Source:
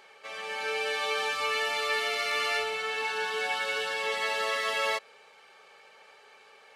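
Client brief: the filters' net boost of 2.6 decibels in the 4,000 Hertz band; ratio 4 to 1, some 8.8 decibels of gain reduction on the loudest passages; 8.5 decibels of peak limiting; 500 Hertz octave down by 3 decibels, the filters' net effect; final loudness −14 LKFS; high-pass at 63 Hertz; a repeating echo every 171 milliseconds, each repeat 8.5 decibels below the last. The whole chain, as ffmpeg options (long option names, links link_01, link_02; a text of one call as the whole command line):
ffmpeg -i in.wav -af "highpass=63,equalizer=frequency=500:width_type=o:gain=-3.5,equalizer=frequency=4000:width_type=o:gain=3.5,acompressor=threshold=-36dB:ratio=4,alimiter=level_in=9.5dB:limit=-24dB:level=0:latency=1,volume=-9.5dB,aecho=1:1:171|342|513|684:0.376|0.143|0.0543|0.0206,volume=26dB" out.wav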